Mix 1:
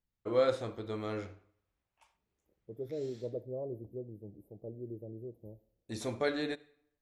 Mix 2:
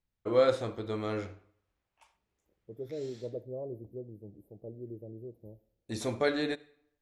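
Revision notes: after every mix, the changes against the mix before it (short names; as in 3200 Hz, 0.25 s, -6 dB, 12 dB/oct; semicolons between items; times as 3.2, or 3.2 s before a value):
first voice +3.5 dB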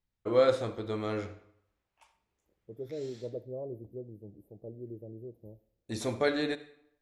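first voice: send +7.0 dB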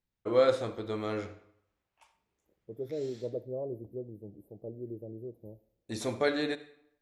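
second voice +3.0 dB; master: add low shelf 94 Hz -6 dB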